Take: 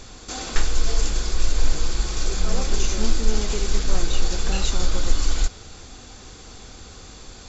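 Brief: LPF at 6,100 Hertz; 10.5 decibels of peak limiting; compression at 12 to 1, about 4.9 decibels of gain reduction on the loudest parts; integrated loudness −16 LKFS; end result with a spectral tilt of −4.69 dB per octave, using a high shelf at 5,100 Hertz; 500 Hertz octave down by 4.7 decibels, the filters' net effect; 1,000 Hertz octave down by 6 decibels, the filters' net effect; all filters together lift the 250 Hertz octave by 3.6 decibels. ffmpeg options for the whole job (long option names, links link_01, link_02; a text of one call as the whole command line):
ffmpeg -i in.wav -af "lowpass=6100,equalizer=frequency=250:width_type=o:gain=7,equalizer=frequency=500:width_type=o:gain=-8,equalizer=frequency=1000:width_type=o:gain=-5.5,highshelf=frequency=5100:gain=-8.5,acompressor=threshold=-14dB:ratio=12,volume=19.5dB,alimiter=limit=0dB:level=0:latency=1" out.wav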